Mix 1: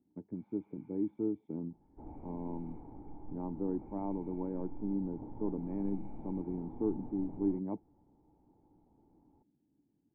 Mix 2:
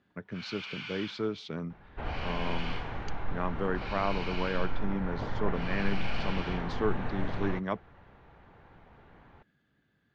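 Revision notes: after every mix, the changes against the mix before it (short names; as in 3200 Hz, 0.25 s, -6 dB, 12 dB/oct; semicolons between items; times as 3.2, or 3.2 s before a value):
speech -6.0 dB; second sound: add notch 1300 Hz, Q 15; master: remove vocal tract filter u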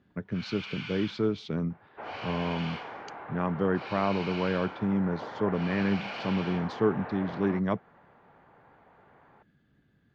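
second sound: add BPF 540–2100 Hz; master: add low shelf 430 Hz +8.5 dB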